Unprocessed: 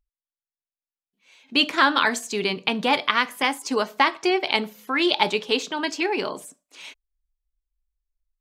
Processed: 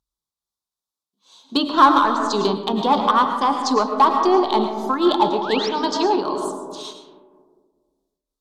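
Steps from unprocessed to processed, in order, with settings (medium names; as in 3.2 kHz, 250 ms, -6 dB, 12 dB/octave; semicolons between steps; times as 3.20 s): high-pass 74 Hz; hum notches 60/120/180/240/300 Hz; low-pass that closes with the level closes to 2 kHz, closed at -19.5 dBFS; FFT filter 300 Hz 0 dB, 600 Hz -3 dB, 1.1 kHz +6 dB, 2.3 kHz -24 dB, 3.6 kHz +5 dB, 12 kHz 0 dB; in parallel at -4.5 dB: hard clipper -18 dBFS, distortion -10 dB; on the sum: painted sound rise, 5.32–5.69 s, 510–5900 Hz -31 dBFS; on a send at -5 dB: reverberation RT60 1.7 s, pre-delay 70 ms; on the sum: random flutter of the level, depth 60%; trim +3.5 dB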